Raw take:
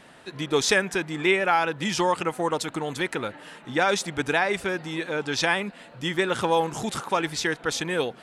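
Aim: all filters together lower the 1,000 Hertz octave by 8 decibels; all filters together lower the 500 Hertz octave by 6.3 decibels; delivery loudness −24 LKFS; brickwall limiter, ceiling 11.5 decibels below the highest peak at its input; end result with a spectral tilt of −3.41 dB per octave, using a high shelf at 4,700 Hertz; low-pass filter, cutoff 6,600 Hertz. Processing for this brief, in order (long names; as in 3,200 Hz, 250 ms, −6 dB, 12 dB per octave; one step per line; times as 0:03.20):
low-pass filter 6,600 Hz
parametric band 500 Hz −6 dB
parametric band 1,000 Hz −9 dB
high-shelf EQ 4,700 Hz +4.5 dB
level +8 dB
brickwall limiter −13.5 dBFS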